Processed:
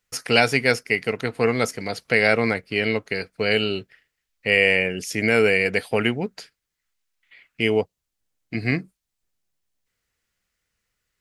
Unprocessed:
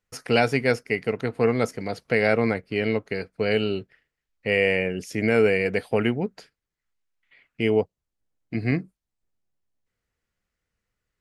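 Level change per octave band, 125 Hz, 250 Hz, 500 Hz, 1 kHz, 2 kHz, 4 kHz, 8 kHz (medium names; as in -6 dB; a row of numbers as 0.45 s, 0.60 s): -0.5 dB, 0.0 dB, +0.5 dB, +2.0 dB, +6.0 dB, +7.5 dB, no reading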